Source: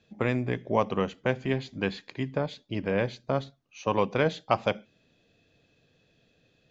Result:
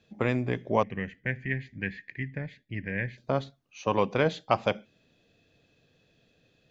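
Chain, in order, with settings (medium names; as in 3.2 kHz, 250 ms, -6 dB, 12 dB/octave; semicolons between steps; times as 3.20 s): 0.83–3.18 s: FFT filter 120 Hz 0 dB, 1.3 kHz -21 dB, 1.8 kHz +10 dB, 3.6 kHz -16 dB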